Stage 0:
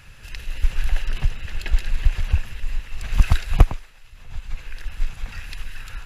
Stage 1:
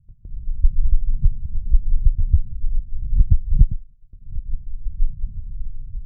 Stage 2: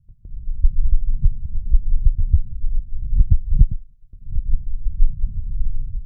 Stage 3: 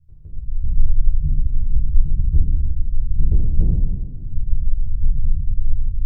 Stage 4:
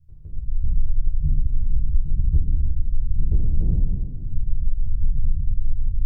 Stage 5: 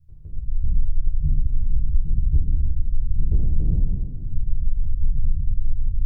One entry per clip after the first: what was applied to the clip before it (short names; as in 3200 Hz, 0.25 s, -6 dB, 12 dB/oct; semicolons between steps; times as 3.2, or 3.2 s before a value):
inverse Chebyshev low-pass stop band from 640 Hz, stop band 60 dB; gate -41 dBFS, range -11 dB; maximiser +5.5 dB; gain -1 dB
AGC gain up to 12 dB; gain -1 dB
soft clip -11.5 dBFS, distortion -10 dB; reverb RT60 1.5 s, pre-delay 12 ms, DRR -5.5 dB; gain -6 dB
compressor, threshold -12 dBFS, peak gain reduction 8 dB
record warp 45 rpm, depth 160 cents